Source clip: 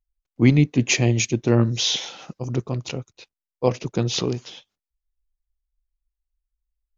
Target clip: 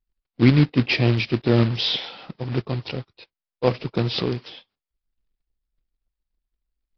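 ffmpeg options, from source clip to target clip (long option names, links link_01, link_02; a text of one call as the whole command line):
ffmpeg -i in.wav -af "acrusher=bits=3:mode=log:mix=0:aa=0.000001,aresample=11025,aresample=44100" -ar 24000 -c:a aac -b:a 32k out.aac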